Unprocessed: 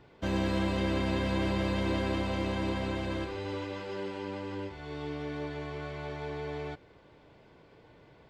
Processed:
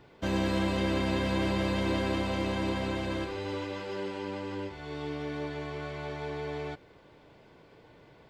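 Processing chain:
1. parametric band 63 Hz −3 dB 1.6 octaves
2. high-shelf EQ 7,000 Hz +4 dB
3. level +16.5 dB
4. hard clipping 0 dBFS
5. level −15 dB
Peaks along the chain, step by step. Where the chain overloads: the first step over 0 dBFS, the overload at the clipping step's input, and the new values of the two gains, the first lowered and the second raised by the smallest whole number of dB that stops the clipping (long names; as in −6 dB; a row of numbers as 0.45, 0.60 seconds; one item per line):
−18.0, −18.0, −1.5, −1.5, −16.5 dBFS
no step passes full scale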